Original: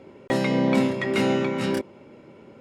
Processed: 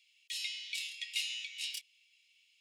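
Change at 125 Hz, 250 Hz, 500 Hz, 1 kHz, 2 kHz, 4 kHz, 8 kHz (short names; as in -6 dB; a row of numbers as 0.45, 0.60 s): under -40 dB, under -40 dB, under -40 dB, under -40 dB, -11.5 dB, -0.5 dB, 0.0 dB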